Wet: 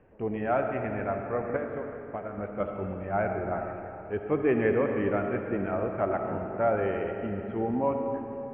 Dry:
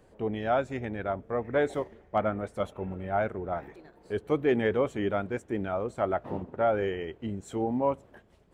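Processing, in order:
0:01.56–0:02.38: downward compressor 10 to 1, threshold −33 dBFS, peak gain reduction 12.5 dB
Chebyshev low-pass filter 2,700 Hz, order 5
comb and all-pass reverb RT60 3.2 s, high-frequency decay 0.6×, pre-delay 25 ms, DRR 3.5 dB

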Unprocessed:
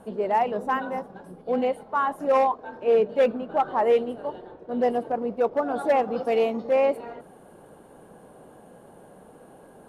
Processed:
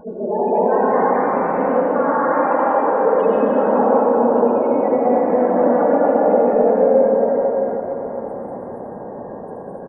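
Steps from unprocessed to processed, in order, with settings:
random phases in long frames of 50 ms
parametric band 470 Hz +4 dB 1.6 octaves
brickwall limiter −19.5 dBFS, peak gain reduction 15 dB
soft clipping −24.5 dBFS, distortion −15 dB
loudspeakers that aren't time-aligned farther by 50 metres −5 dB, 76 metres −3 dB
gate on every frequency bin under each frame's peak −20 dB strong
delay with pitch and tempo change per echo 315 ms, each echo +2 semitones, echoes 3, each echo −6 dB
convolution reverb RT60 5.1 s, pre-delay 68 ms, DRR −6 dB
level +4 dB

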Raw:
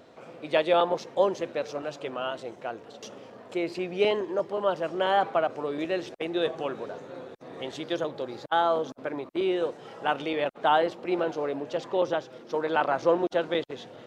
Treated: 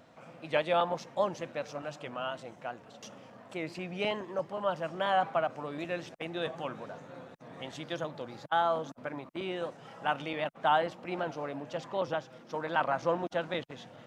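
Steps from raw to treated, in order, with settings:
graphic EQ with 15 bands 160 Hz +4 dB, 400 Hz −11 dB, 4,000 Hz −4 dB
wow of a warped record 78 rpm, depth 100 cents
level −2.5 dB

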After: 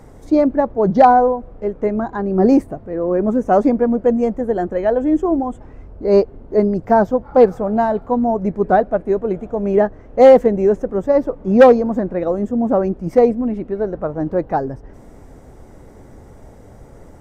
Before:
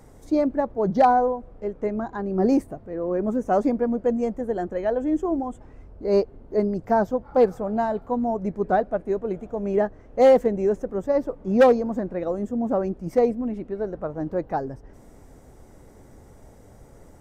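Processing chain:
high-shelf EQ 4,500 Hz −7.5 dB
level +7.5 dB

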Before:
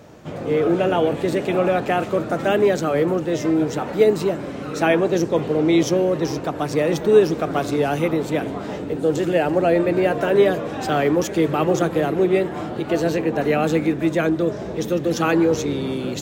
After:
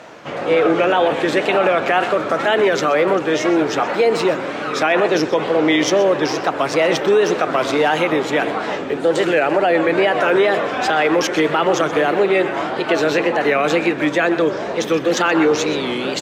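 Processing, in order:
tape wow and flutter 130 cents
resonant band-pass 1,800 Hz, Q 0.58
single-tap delay 126 ms −16 dB
boost into a limiter +18.5 dB
level −6 dB

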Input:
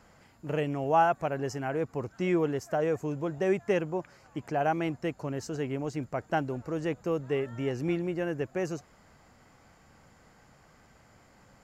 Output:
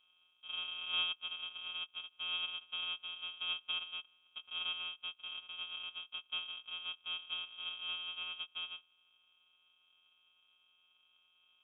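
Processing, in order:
samples sorted by size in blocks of 256 samples
formant filter u
voice inversion scrambler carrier 3,500 Hz
level +1.5 dB

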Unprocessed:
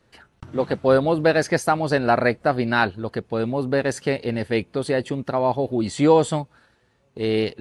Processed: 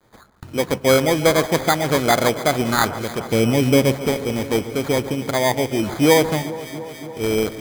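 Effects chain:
bit-depth reduction 10 bits, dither none
0:03.29–0:04.07: tilt shelving filter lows +8 dB, about 790 Hz
decimation without filtering 16×
delay that swaps between a low-pass and a high-pass 141 ms, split 1,500 Hz, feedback 86%, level −14 dB
convolution reverb RT60 0.75 s, pre-delay 5 ms, DRR 19 dB
level +1.5 dB

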